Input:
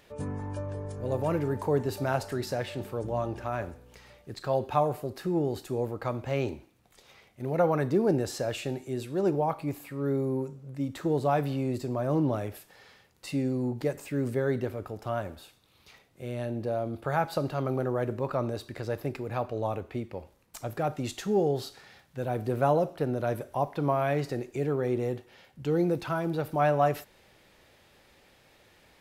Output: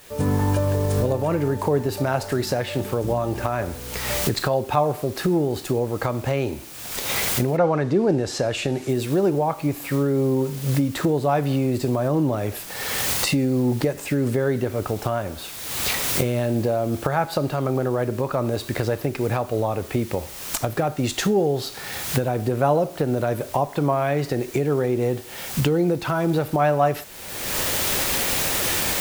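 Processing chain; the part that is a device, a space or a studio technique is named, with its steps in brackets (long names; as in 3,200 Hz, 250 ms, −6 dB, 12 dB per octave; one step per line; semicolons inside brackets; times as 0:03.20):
cheap recorder with automatic gain (white noise bed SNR 25 dB; camcorder AGC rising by 38 dB per second)
0:07.56–0:08.88: low-pass filter 5,000 Hz → 10,000 Hz 12 dB per octave
level +5 dB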